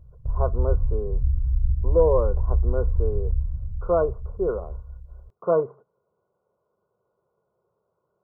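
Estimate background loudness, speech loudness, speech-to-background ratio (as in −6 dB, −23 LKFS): −27.5 LKFS, −26.5 LKFS, 1.0 dB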